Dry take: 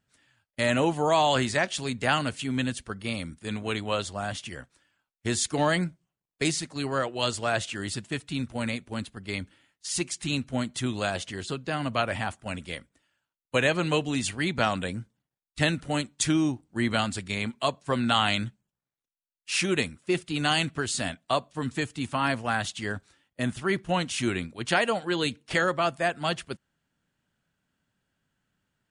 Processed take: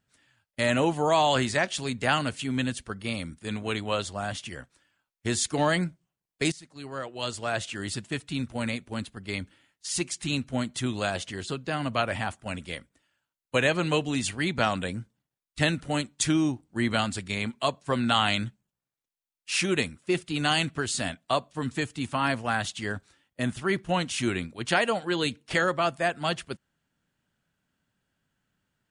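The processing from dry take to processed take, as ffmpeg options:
-filter_complex "[0:a]asplit=2[s0][s1];[s0]atrim=end=6.52,asetpts=PTS-STARTPTS,afade=t=out:st=6.516:d=0.004:c=hsin:silence=0.125893[s2];[s1]atrim=start=6.52,asetpts=PTS-STARTPTS,afade=t=in:d=1.42:silence=0.125893[s3];[s2][s3]concat=n=2:v=0:a=1"

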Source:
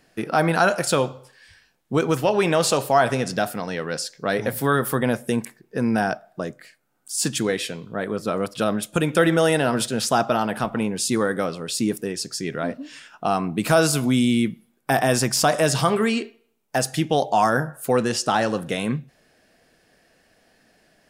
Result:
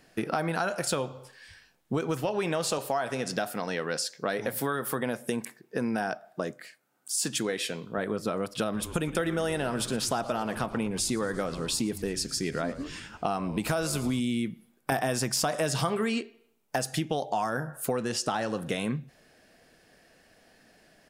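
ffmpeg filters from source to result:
-filter_complex "[0:a]asettb=1/sr,asplit=3[s0][s1][s2];[s0]atrim=end=2.784[s3];[s1]atrim=start=2.78:end=7.98,asetpts=PTS-STARTPTS,afade=t=in:d=0.004:c=qsin,afade=t=out:st=5.196:d=0.004:c=qsin,highpass=f=210:p=1[s4];[s2]atrim=start=7.976[s5];[s3][s4]acrossfade=d=0.004:c1=hsin:c2=qsin[s6];[s6][s5]acrossfade=d=0.004:c1=qsin:c2=hsin,asplit=3[s7][s8][s9];[s7]afade=t=out:st=8.72:d=0.02[s10];[s8]asplit=7[s11][s12][s13][s14][s15][s16][s17];[s12]adelay=114,afreqshift=-120,volume=0.141[s18];[s13]adelay=228,afreqshift=-240,volume=0.0871[s19];[s14]adelay=342,afreqshift=-360,volume=0.0543[s20];[s15]adelay=456,afreqshift=-480,volume=0.0335[s21];[s16]adelay=570,afreqshift=-600,volume=0.0209[s22];[s17]adelay=684,afreqshift=-720,volume=0.0129[s23];[s11][s18][s19][s20][s21][s22][s23]amix=inputs=7:normalize=0,afade=t=in:st=8.72:d=0.02,afade=t=out:st=14.19:d=0.02[s24];[s9]afade=t=in:st=14.19:d=0.02[s25];[s10][s24][s25]amix=inputs=3:normalize=0,asplit=3[s26][s27][s28];[s26]atrim=end=14.922[s29];[s27]atrim=start=14.918:end=16.212,asetpts=PTS-STARTPTS,volume=2.11[s30];[s28]atrim=start=16.208[s31];[s29][s30]acrossfade=d=0.004:c1=hsin:c2=hsin[s32];[s32][s31]acrossfade=d=0.004:c1=hsin:c2=hsin,acompressor=threshold=0.0501:ratio=6"

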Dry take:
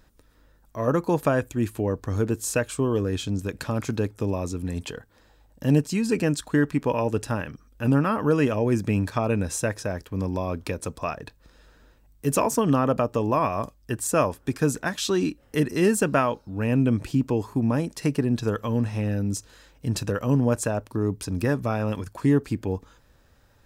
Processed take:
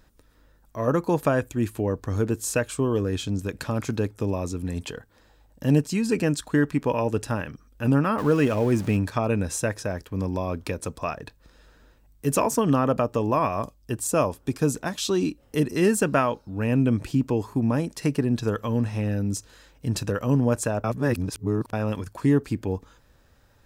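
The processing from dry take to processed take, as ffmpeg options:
-filter_complex "[0:a]asettb=1/sr,asplit=3[s0][s1][s2];[s0]atrim=end=8.184[s3];[s1]atrim=start=8.18:end=8.97,asetpts=PTS-STARTPTS,afade=t=in:d=0.004:c=qsin,afade=t=out:st=0.786:d=0.004:c=qsin,aeval=exprs='val(0)+0.5*0.0178*sgn(val(0))':c=same[s4];[s2]atrim=start=8.966[s5];[s3][s4]acrossfade=d=0.004:c1=hsin:c2=qsin[s6];[s6][s5]acrossfade=d=0.004:c1=qsin:c2=hsin,asettb=1/sr,asplit=3[s7][s8][s9];[s7]atrim=end=13.644[s10];[s8]atrim=start=13.64:end=15.75,asetpts=PTS-STARTPTS,afade=t=in:d=0.004:c=qsin,afade=t=out:st=2.106:d=0.004:c=qsin,equalizer=f=1700:t=o:w=0.77:g=-6[s11];[s9]atrim=start=15.746[s12];[s10][s11]acrossfade=d=0.004:c1=hsin:c2=qsin[s13];[s13][s12]acrossfade=d=0.004:c1=qsin:c2=hsin,asplit=3[s14][s15][s16];[s14]atrim=end=20.842[s17];[s15]atrim=start=20.838:end=21.732,asetpts=PTS-STARTPTS,areverse[s18];[s16]atrim=start=21.728[s19];[s17][s18]acrossfade=d=0.004:c1=hsin:c2=hsin[s20];[s20][s19]acrossfade=d=0.004:c1=hsin:c2=hsin"

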